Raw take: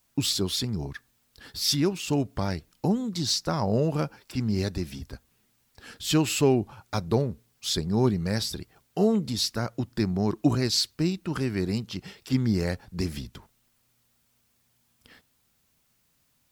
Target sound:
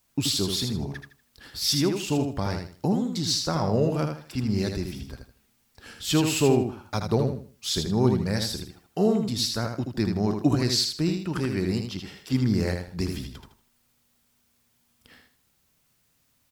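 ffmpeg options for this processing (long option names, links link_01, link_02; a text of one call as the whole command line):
ffmpeg -i in.wav -af "aecho=1:1:79|158|237|316:0.531|0.143|0.0387|0.0104" out.wav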